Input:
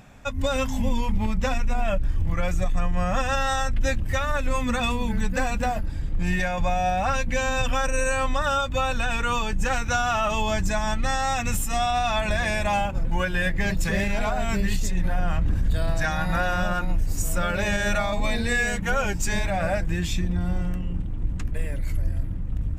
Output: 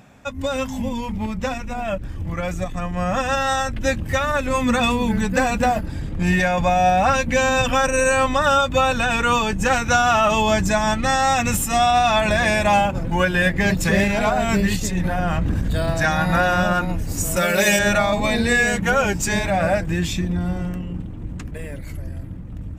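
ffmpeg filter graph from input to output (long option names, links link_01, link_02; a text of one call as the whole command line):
ffmpeg -i in.wav -filter_complex "[0:a]asettb=1/sr,asplit=3[link_01][link_02][link_03];[link_01]atrim=end=17.364[link_04];[link_02]atrim=start=17.36:end=17.79,asetpts=PTS-STARTPTS,afade=type=in:duration=0.004:curve=qsin,afade=type=out:start_time=0.426:duration=0.004:curve=qsin,aemphasis=mode=production:type=bsi,aecho=1:1:5.3:0.69,atrim=end_sample=18963[link_05];[link_03]atrim=start=17.786[link_06];[link_04][link_05]acrossfade=duration=0.004:curve1=hsin:curve2=qsin[link_07];[link_07][link_06]acrossfade=duration=0.004:curve1=qsin:curve2=hsin,highpass=frequency=240:poles=1,lowshelf=frequency=440:gain=7,dynaudnorm=framelen=650:gausssize=11:maxgain=6.5dB" out.wav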